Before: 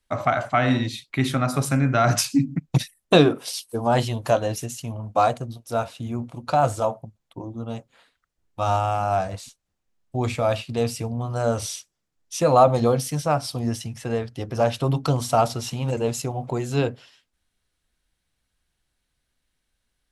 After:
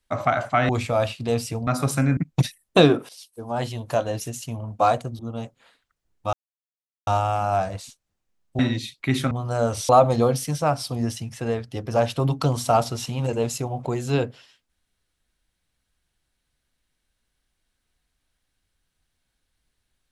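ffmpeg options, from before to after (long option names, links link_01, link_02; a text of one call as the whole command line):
ffmpeg -i in.wav -filter_complex "[0:a]asplit=10[link_01][link_02][link_03][link_04][link_05][link_06][link_07][link_08][link_09][link_10];[link_01]atrim=end=0.692[link_11];[link_02]atrim=start=10.178:end=11.162[link_12];[link_03]atrim=start=1.408:end=1.912[link_13];[link_04]atrim=start=2.528:end=3.45,asetpts=PTS-STARTPTS,afade=type=out:start_time=0.918:duration=0.004:curve=hsin:silence=0.158489[link_14];[link_05]atrim=start=3.45:end=5.552,asetpts=PTS-STARTPTS,afade=type=in:duration=1.35:silence=0.158489[link_15];[link_06]atrim=start=7.518:end=8.66,asetpts=PTS-STARTPTS,afade=type=out:start_time=1.138:duration=0.004:curve=hsin,apad=pad_dur=0.74[link_16];[link_07]atrim=start=8.66:end=10.182,asetpts=PTS-STARTPTS,afade=type=in:duration=0.004:curve=hsin[link_17];[link_08]atrim=start=0.688:end=1.412[link_18];[link_09]atrim=start=11.158:end=11.742[link_19];[link_10]atrim=start=12.528[link_20];[link_11][link_12]acrossfade=duration=0.004:curve1=hsin:curve2=hsin[link_21];[link_21][link_13]acrossfade=duration=0.004:curve1=hsin:curve2=hsin[link_22];[link_14][link_15]concat=n=2:v=0:a=1[link_23];[link_22][link_23]acrossfade=duration=0.004:curve1=hsin:curve2=hsin[link_24];[link_16][link_17]concat=n=2:v=0:a=1[link_25];[link_24][link_25]acrossfade=duration=0.004:curve1=hsin:curve2=hsin[link_26];[link_26][link_18]acrossfade=duration=0.004:curve1=hsin:curve2=hsin[link_27];[link_27][link_19]acrossfade=duration=0.004:curve1=hsin:curve2=hsin[link_28];[link_28][link_20]acrossfade=duration=0.004:curve1=hsin:curve2=hsin" out.wav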